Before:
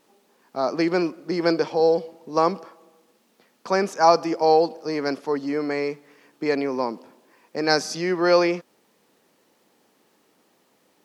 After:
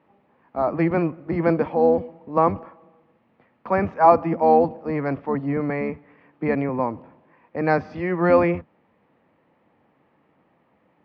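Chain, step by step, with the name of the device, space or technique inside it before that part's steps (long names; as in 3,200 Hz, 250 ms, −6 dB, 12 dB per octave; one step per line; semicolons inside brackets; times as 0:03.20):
sub-octave bass pedal (sub-octave generator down 1 octave, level −1 dB; loudspeaker in its box 87–2,200 Hz, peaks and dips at 120 Hz −7 dB, 400 Hz −7 dB, 1,500 Hz −5 dB)
level +2.5 dB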